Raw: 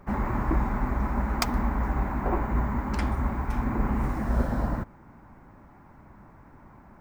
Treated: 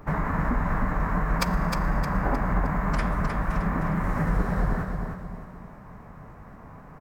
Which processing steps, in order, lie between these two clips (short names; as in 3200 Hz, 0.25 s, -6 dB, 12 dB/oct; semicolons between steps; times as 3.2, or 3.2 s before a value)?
Schroeder reverb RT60 2.9 s, DRR 18 dB; compressor 3:1, threshold -30 dBFS, peak gain reduction 9 dB; formant-preserving pitch shift -5 st; on a send: feedback echo 0.309 s, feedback 40%, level -5.5 dB; on the sum: dynamic EQ 1600 Hz, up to +6 dB, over -54 dBFS, Q 1.6; gain +6 dB